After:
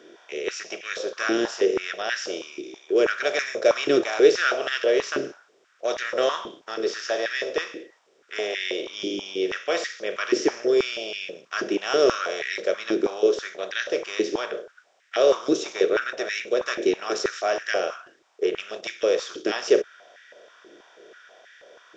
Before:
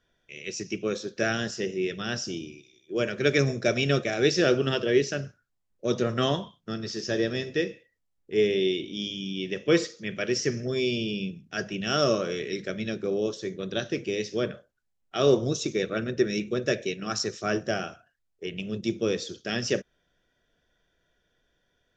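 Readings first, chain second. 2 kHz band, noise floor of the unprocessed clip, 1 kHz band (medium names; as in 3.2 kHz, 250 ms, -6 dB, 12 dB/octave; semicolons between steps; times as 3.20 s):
+4.5 dB, -75 dBFS, +5.5 dB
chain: spectral levelling over time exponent 0.6; step-sequenced high-pass 6.2 Hz 330–1800 Hz; trim -4.5 dB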